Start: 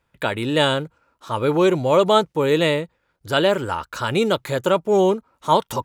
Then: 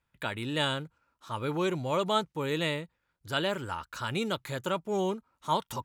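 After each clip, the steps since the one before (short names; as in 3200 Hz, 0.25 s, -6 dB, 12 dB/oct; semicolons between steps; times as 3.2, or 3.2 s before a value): bell 490 Hz -6.5 dB 1.4 oct; gain -8.5 dB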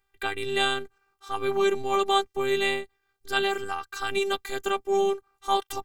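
robotiser 393 Hz; gain +7.5 dB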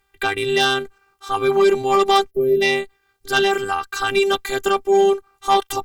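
added harmonics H 5 -15 dB, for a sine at -6.5 dBFS; spectral gain 2.3–2.62, 650–11000 Hz -25 dB; gain +4.5 dB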